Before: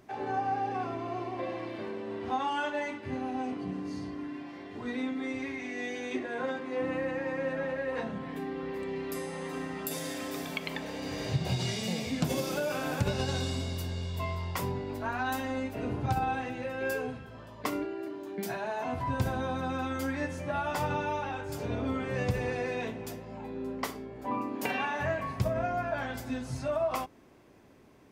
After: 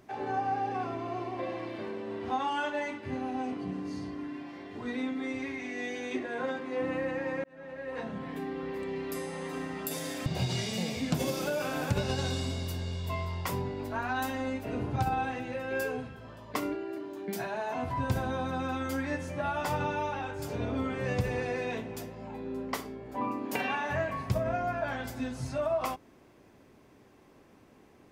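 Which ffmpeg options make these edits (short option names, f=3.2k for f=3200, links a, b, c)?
-filter_complex "[0:a]asplit=3[a][b][c];[a]atrim=end=7.44,asetpts=PTS-STARTPTS,afade=t=out:st=7.436:d=0.004:c=hsin[d];[b]atrim=start=7.44:end=10.262,asetpts=PTS-STARTPTS,afade=t=in:d=0.79[e];[c]atrim=start=11.358[f];[d][e]concat=n=2:v=0:a=1[g];[g][f]acrossfade=d=0.004:c1=hsin:c2=hsin"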